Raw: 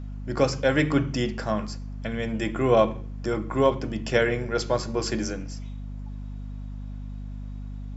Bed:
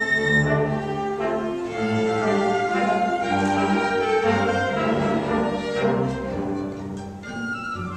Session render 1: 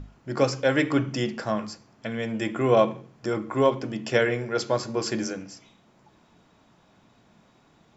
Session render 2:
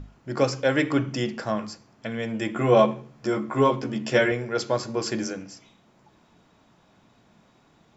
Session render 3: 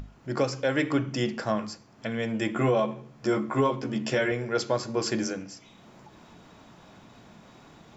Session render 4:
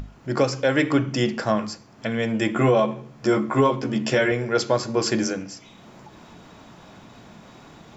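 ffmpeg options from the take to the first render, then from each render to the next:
-af "bandreject=f=50:t=h:w=6,bandreject=f=100:t=h:w=6,bandreject=f=150:t=h:w=6,bandreject=f=200:t=h:w=6,bandreject=f=250:t=h:w=6"
-filter_complex "[0:a]asettb=1/sr,asplit=3[s0][s1][s2];[s0]atrim=end=2.544[s3];[s1]atrim=start=2.54:end=4.32,asetpts=PTS-STARTPTS,afade=t=in:d=0.004:c=qsin,afade=t=out:st=1.776:d=0.004:c=qsin,asplit=2[s4][s5];[s5]adelay=14,volume=0.708[s6];[s4][s6]amix=inputs=2:normalize=0,atrim=end_sample=78498[s7];[s2]atrim=start=4.316[s8];[s3][s7]acrossfade=d=0.004:c1=hsin:c2=qsin[s9];[s9][s8]acrossfade=d=0.004:c1=qsin:c2=hsin"
-af "alimiter=limit=0.188:level=0:latency=1:release=312,acompressor=mode=upward:threshold=0.00794:ratio=2.5"
-af "volume=1.88"

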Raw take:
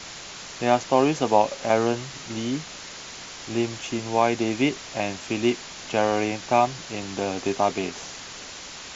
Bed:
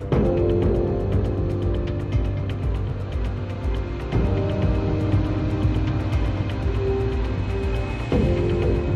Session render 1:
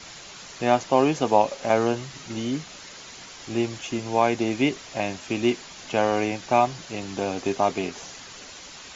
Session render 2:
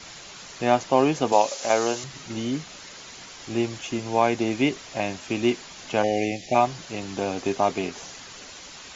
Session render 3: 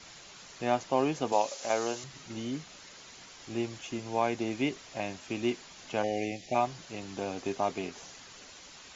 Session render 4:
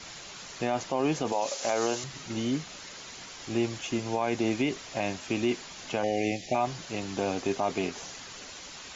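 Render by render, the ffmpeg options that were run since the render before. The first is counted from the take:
-af "afftdn=nr=6:nf=-40"
-filter_complex "[0:a]asettb=1/sr,asplit=3[s0][s1][s2];[s0]atrim=end=1.324[s3];[s1]atrim=start=1.32:end=2.04,asetpts=PTS-STARTPTS,afade=t=in:d=0.004:c=qsin,afade=t=out:st=0.716:d=0.004:c=qsin,bass=f=250:g=-11,treble=f=4000:g=12[s4];[s2]atrim=start=2.036[s5];[s3][s4]acrossfade=d=0.004:c1=hsin:c2=qsin[s6];[s6][s5]acrossfade=d=0.004:c1=qsin:c2=hsin,asplit=3[s7][s8][s9];[s7]afade=t=out:st=6.02:d=0.02[s10];[s8]asuperstop=centerf=1200:order=12:qfactor=1.2,afade=t=in:st=6.02:d=0.02,afade=t=out:st=6.54:d=0.02[s11];[s9]afade=t=in:st=6.54:d=0.02[s12];[s10][s11][s12]amix=inputs=3:normalize=0"
-af "volume=0.398"
-af "acontrast=61,alimiter=limit=0.133:level=0:latency=1:release=33"

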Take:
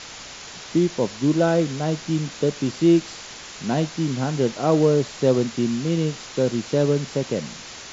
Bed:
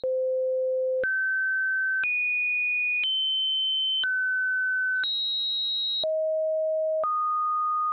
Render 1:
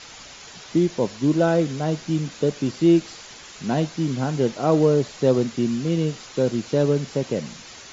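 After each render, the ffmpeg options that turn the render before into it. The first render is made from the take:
-af "afftdn=nr=6:nf=-39"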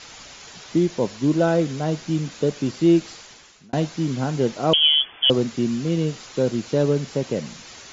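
-filter_complex "[0:a]asettb=1/sr,asplit=3[s0][s1][s2];[s0]atrim=end=4.734[s3];[s1]atrim=start=4.73:end=5.3,asetpts=PTS-STARTPTS,afade=t=in:d=0.004:c=qsin,afade=t=out:st=0.566:d=0.004:c=qsin,lowpass=f=3000:t=q:w=0.5098,lowpass=f=3000:t=q:w=0.6013,lowpass=f=3000:t=q:w=0.9,lowpass=f=3000:t=q:w=2.563,afreqshift=-3500[s4];[s2]atrim=start=5.296[s5];[s3][s4]acrossfade=d=0.004:c1=hsin:c2=qsin[s6];[s6][s5]acrossfade=d=0.004:c1=qsin:c2=hsin,asplit=2[s7][s8];[s7]atrim=end=3.73,asetpts=PTS-STARTPTS,afade=t=out:st=3.11:d=0.62[s9];[s8]atrim=start=3.73,asetpts=PTS-STARTPTS,afade=t=in:d=0.004:c=hsin[s10];[s9][s10]concat=n=2:v=0:a=1"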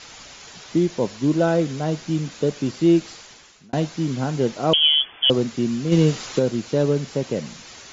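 -filter_complex "[0:a]asplit=3[s0][s1][s2];[s0]afade=t=out:st=5.91:d=0.02[s3];[s1]acontrast=76,afade=t=in:st=5.91:d=0.02,afade=t=out:st=6.38:d=0.02[s4];[s2]afade=t=in:st=6.38:d=0.02[s5];[s3][s4][s5]amix=inputs=3:normalize=0"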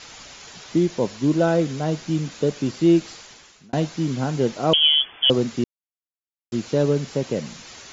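-filter_complex "[0:a]asplit=3[s0][s1][s2];[s0]atrim=end=5.64,asetpts=PTS-STARTPTS,afade=t=out:st=5.636:d=0.004:c=hsin[s3];[s1]atrim=start=5.64:end=6.52,asetpts=PTS-STARTPTS,volume=0[s4];[s2]atrim=start=6.52,asetpts=PTS-STARTPTS,afade=t=in:d=0.004:c=hsin[s5];[s3][s4][s5]concat=n=3:v=0:a=1"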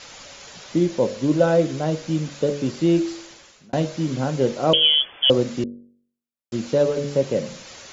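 -af "equalizer=f=550:w=5.9:g=9,bandreject=f=47.77:t=h:w=4,bandreject=f=95.54:t=h:w=4,bandreject=f=143.31:t=h:w=4,bandreject=f=191.08:t=h:w=4,bandreject=f=238.85:t=h:w=4,bandreject=f=286.62:t=h:w=4,bandreject=f=334.39:t=h:w=4,bandreject=f=382.16:t=h:w=4,bandreject=f=429.93:t=h:w=4,bandreject=f=477.7:t=h:w=4,bandreject=f=525.47:t=h:w=4,bandreject=f=573.24:t=h:w=4,bandreject=f=621.01:t=h:w=4,bandreject=f=668.78:t=h:w=4"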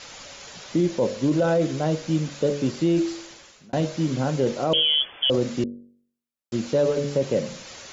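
-af "alimiter=limit=0.224:level=0:latency=1:release=17"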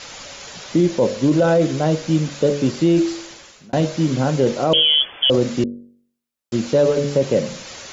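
-af "volume=1.88"

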